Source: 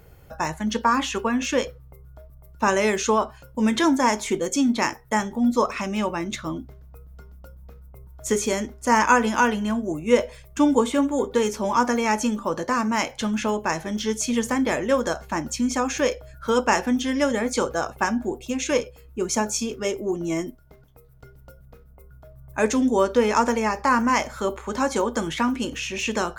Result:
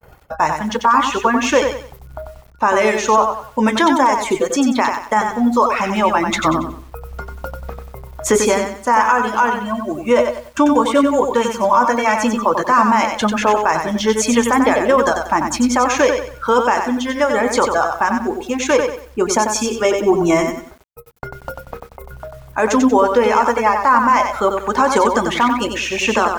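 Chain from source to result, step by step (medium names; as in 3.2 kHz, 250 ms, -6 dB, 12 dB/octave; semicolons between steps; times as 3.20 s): 9.53–12.22 s: comb of notches 420 Hz; reverb removal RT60 1 s; gate -50 dBFS, range -55 dB; peaking EQ 980 Hz +12 dB 2.1 oct; level rider gain up to 9 dB; loudness maximiser +8 dB; bit-crushed delay 93 ms, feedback 35%, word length 7-bit, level -5.5 dB; trim -3.5 dB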